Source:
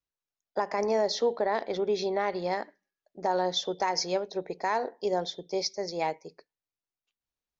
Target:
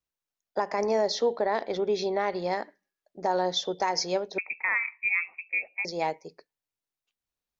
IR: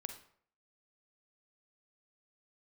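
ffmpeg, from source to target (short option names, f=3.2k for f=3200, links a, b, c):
-filter_complex "[0:a]asettb=1/sr,asplit=3[a][b][c];[a]atrim=end=4.384[d];[b]atrim=start=4.38:end=5.85,asetpts=PTS-STARTPTS,afade=t=in:d=0.004:c=qsin,afade=t=out:st=1.466:d=0.004:c=qsin,lowpass=f=2.4k:t=q:w=0.5098,lowpass=f=2.4k:t=q:w=0.6013,lowpass=f=2.4k:t=q:w=0.9,lowpass=f=2.4k:t=q:w=2.563,afreqshift=-2800[e];[c]atrim=start=5.846[f];[d][e]acrossfade=d=0.004:c1=hsin:c2=qsin[g];[g][f]acrossfade=d=0.004:c1=qsin:c2=hsin,volume=1dB"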